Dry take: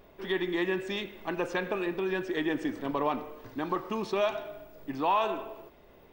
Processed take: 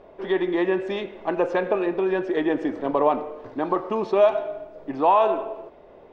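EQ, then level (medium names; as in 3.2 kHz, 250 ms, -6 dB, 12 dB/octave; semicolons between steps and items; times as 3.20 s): distance through air 95 m; peaking EQ 590 Hz +12 dB 2 oct; 0.0 dB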